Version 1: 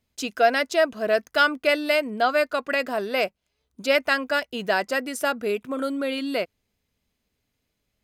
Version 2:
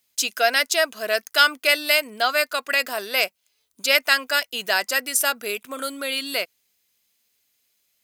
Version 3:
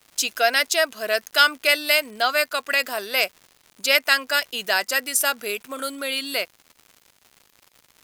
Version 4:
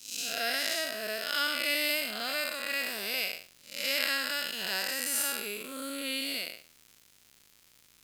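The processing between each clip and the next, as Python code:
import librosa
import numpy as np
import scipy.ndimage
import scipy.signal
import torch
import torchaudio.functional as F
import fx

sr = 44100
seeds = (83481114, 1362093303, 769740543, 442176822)

y1 = fx.tilt_eq(x, sr, slope=4.5)
y2 = fx.dmg_crackle(y1, sr, seeds[0], per_s=200.0, level_db=-37.0)
y3 = fx.spec_blur(y2, sr, span_ms=222.0)
y3 = fx.peak_eq(y3, sr, hz=820.0, db=-8.5, octaves=2.3)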